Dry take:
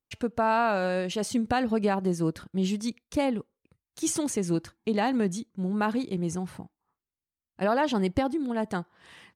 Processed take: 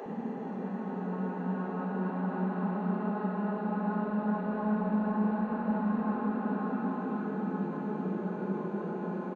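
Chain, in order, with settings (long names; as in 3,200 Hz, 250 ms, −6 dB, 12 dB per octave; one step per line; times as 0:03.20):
spectrum averaged block by block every 400 ms
Butterworth high-pass 160 Hz 36 dB per octave
low-shelf EQ 310 Hz −8 dB
convolution reverb RT60 3.9 s, pre-delay 30 ms, DRR 3 dB
gain into a clipping stage and back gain 24 dB
low-pass filter 1,200 Hz 12 dB per octave
extreme stretch with random phases 14×, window 0.25 s, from 0:05.51
multiband delay without the direct sound highs, lows 60 ms, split 360 Hz
level +3 dB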